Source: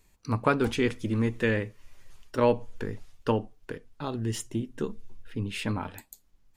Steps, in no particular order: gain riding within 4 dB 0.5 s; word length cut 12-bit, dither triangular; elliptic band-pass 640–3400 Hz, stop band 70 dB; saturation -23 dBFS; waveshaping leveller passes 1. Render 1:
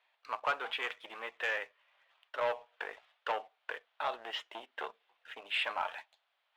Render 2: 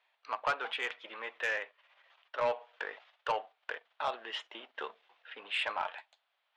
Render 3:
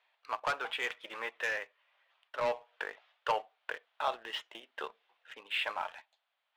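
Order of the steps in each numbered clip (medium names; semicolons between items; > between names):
word length cut > gain riding > saturation > elliptic band-pass > waveshaping leveller; word length cut > waveshaping leveller > gain riding > elliptic band-pass > saturation; word length cut > elliptic band-pass > waveshaping leveller > saturation > gain riding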